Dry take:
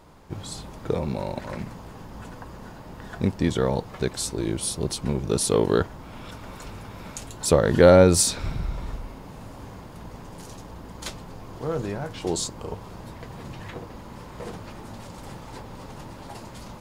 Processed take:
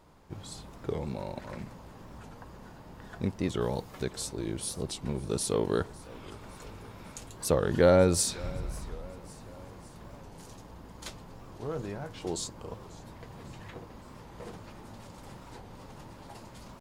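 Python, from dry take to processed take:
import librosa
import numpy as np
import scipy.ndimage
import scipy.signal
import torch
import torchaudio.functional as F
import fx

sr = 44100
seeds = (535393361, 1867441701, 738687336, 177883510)

y = fx.high_shelf(x, sr, hz=5700.0, db=10.5, at=(3.62, 4.03))
y = fx.echo_feedback(y, sr, ms=553, feedback_pct=56, wet_db=-21.5)
y = fx.record_warp(y, sr, rpm=45.0, depth_cents=160.0)
y = F.gain(torch.from_numpy(y), -7.5).numpy()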